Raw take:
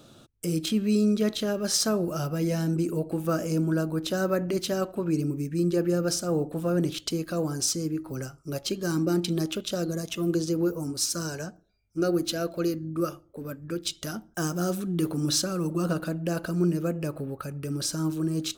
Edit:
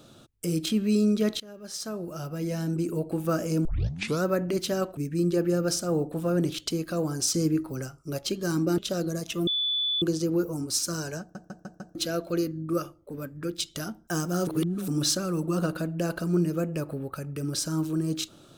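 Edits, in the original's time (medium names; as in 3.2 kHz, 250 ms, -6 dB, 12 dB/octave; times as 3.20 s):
1.40–3.15 s: fade in, from -21.5 dB
3.65 s: tape start 0.59 s
4.97–5.37 s: delete
7.74–8.06 s: gain +5 dB
9.18–9.60 s: delete
10.29 s: add tone 3.47 kHz -24 dBFS 0.55 s
11.47 s: stutter in place 0.15 s, 5 plays
14.74–15.15 s: reverse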